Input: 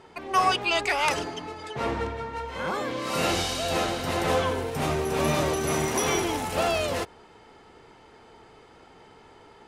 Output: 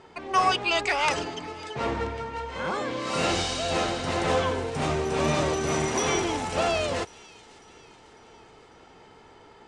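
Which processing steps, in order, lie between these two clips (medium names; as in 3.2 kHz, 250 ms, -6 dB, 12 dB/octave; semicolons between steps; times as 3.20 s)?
steep low-pass 8.8 kHz 36 dB/octave; feedback echo behind a high-pass 548 ms, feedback 52%, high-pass 2.5 kHz, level -19 dB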